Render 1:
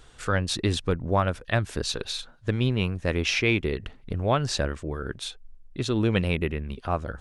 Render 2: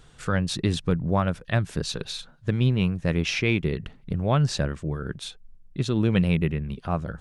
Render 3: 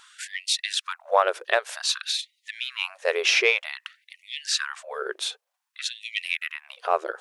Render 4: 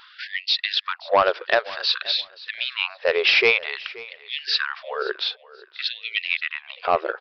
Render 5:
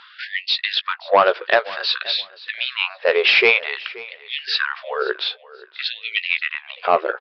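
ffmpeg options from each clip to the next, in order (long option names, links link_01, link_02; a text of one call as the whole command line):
ffmpeg -i in.wav -af "equalizer=frequency=160:width=2:gain=11.5,volume=-2dB" out.wav
ffmpeg -i in.wav -af "acontrast=50,afftfilt=real='re*gte(b*sr/1024,340*pow(1900/340,0.5+0.5*sin(2*PI*0.53*pts/sr)))':imag='im*gte(b*sr/1024,340*pow(1900/340,0.5+0.5*sin(2*PI*0.53*pts/sr)))':win_size=1024:overlap=0.75,volume=1.5dB" out.wav
ffmpeg -i in.wav -af "aresample=11025,asoftclip=type=tanh:threshold=-12.5dB,aresample=44100,aecho=1:1:527|1054:0.1|0.022,volume=5dB" out.wav
ffmpeg -i in.wav -filter_complex "[0:a]highpass=150,lowpass=4100,asplit=2[link_01][link_02];[link_02]adelay=16,volume=-12dB[link_03];[link_01][link_03]amix=inputs=2:normalize=0,volume=3.5dB" out.wav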